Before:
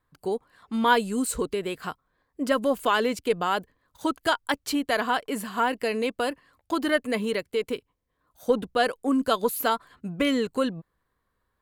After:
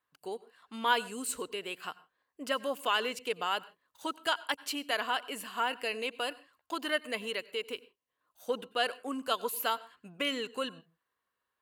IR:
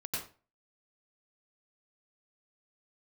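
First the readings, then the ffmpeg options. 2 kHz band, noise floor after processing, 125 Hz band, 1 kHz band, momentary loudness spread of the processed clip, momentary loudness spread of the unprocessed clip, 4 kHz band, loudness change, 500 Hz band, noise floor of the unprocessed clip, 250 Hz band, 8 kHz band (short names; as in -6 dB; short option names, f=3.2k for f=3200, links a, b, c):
-5.0 dB, under -85 dBFS, under -15 dB, -7.0 dB, 13 LU, 10 LU, -1.5 dB, -7.5 dB, -10.0 dB, -77 dBFS, -14.5 dB, -5.0 dB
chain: -filter_complex "[0:a]highpass=f=740:p=1,equalizer=f=2.8k:t=o:w=0.21:g=9,asplit=2[a][b];[1:a]atrim=start_sample=2205,afade=t=out:st=0.22:d=0.01,atrim=end_sample=10143[c];[b][c]afir=irnorm=-1:irlink=0,volume=-21dB[d];[a][d]amix=inputs=2:normalize=0,volume=-5.5dB"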